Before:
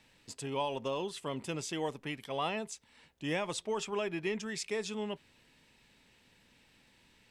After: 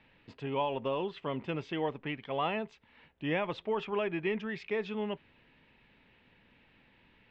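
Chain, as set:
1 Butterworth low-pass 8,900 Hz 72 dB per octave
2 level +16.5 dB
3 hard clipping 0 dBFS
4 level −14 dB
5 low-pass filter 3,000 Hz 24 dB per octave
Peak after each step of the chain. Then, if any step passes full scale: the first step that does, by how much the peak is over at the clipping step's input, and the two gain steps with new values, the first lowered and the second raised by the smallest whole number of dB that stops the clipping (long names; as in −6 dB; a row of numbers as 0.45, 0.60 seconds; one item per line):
−21.5, −5.0, −5.0, −19.0, −19.0 dBFS
no step passes full scale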